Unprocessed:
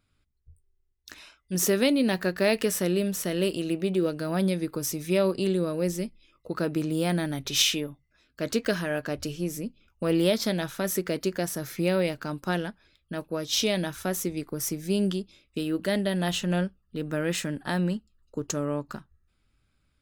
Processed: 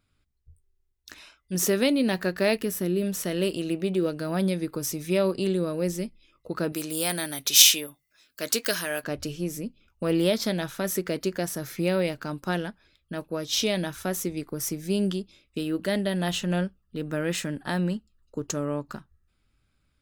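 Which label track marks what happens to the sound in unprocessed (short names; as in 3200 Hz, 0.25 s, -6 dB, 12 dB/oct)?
2.570000	3.030000	spectral gain 430–10000 Hz -7 dB
6.720000	9.040000	RIAA curve recording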